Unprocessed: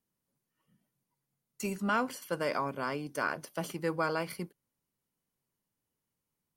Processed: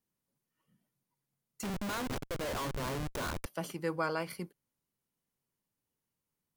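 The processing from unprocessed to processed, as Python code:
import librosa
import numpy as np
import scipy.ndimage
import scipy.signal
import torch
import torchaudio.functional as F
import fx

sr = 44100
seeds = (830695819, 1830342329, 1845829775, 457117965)

y = fx.schmitt(x, sr, flips_db=-38.0, at=(1.63, 3.46))
y = y * 10.0 ** (-2.0 / 20.0)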